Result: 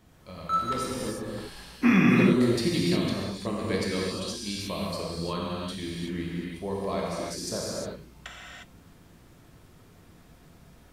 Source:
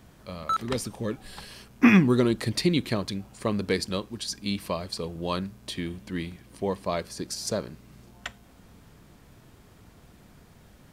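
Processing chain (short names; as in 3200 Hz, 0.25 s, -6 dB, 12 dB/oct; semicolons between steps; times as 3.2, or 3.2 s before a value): non-linear reverb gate 0.38 s flat, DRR -5.5 dB; gain -7 dB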